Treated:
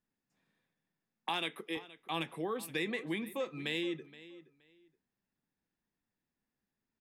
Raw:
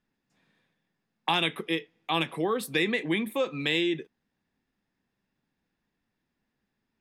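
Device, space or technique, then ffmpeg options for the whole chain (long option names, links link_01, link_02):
exciter from parts: -filter_complex "[0:a]asettb=1/sr,asplit=3[link_01][link_02][link_03];[link_01]atrim=end=1.294[link_04];[link_02]atrim=start=1.29:end=1.77,asetpts=PTS-STARTPTS,afade=type=in:duration=0.004:curve=qsin,afade=type=out:start_time=0.476:duration=0.004:curve=qsin,highpass=230[link_05];[link_03]atrim=start=1.766[link_06];[link_04][link_05]acrossfade=duration=0.004:curve1=hsin:curve2=qsin[link_07];[link_07][link_06]acrossfade=duration=0.004:curve1=qsin:curve2=hsin,asplit=2[link_08][link_09];[link_09]adelay=472,lowpass=frequency=5000:poles=1,volume=-17dB,asplit=2[link_10][link_11];[link_11]adelay=472,lowpass=frequency=5000:poles=1,volume=0.22[link_12];[link_08][link_10][link_12]amix=inputs=3:normalize=0,asplit=2[link_13][link_14];[link_14]highpass=3400,asoftclip=type=tanh:threshold=-32dB,highpass=frequency=4300:poles=1,volume=-5dB[link_15];[link_13][link_15]amix=inputs=2:normalize=0,volume=-9dB"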